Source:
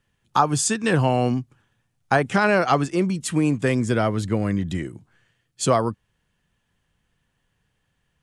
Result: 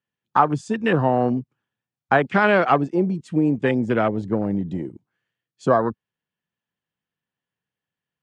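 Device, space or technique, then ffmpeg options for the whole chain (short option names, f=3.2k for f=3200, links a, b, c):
over-cleaned archive recording: -filter_complex "[0:a]asettb=1/sr,asplit=3[a][b][c];[a]atrim=end=2.244[d];[b]atrim=start=2.24:end=2.65,asetpts=PTS-STARTPTS,afade=t=in:d=0.004:c=qsin,afade=t=out:st=0.406:d=0.004:c=qsin,equalizer=f=4.5k:t=o:w=0.27:g=12[e];[c]atrim=start=2.646[f];[d][e]acrossfade=d=0.004:c1=hsin:c2=qsin[g];[g][f]acrossfade=d=0.004:c1=qsin:c2=hsin,highpass=160,lowpass=5.4k,afwtdn=0.0398,volume=2dB"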